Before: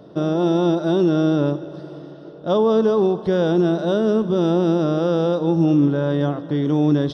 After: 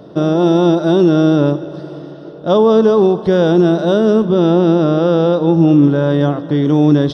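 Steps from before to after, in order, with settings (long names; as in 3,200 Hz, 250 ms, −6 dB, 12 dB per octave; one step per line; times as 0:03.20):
0:04.25–0:05.84: low-pass filter 4,900 Hz 12 dB per octave
level +6.5 dB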